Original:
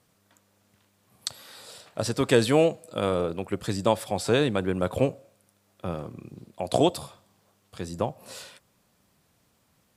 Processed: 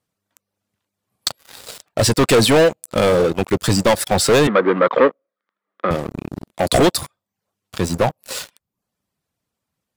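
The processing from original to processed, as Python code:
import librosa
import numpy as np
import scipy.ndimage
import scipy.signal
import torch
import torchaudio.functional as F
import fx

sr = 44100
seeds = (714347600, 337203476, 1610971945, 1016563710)

y = fx.dereverb_blind(x, sr, rt60_s=0.59)
y = fx.leveller(y, sr, passes=5)
y = fx.cabinet(y, sr, low_hz=230.0, low_slope=24, high_hz=3200.0, hz=(490.0, 760.0, 1200.0, 1900.0, 2700.0), db=(4, -5, 10, 6, -6), at=(4.47, 5.91))
y = y * 10.0 ** (-1.5 / 20.0)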